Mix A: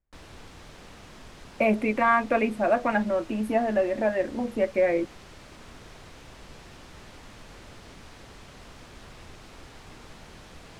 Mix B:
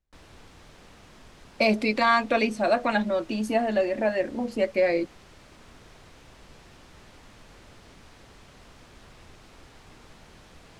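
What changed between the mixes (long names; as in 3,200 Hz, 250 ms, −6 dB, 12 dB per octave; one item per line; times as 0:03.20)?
speech: remove Butterworth band-reject 5,100 Hz, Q 0.66
background −4.0 dB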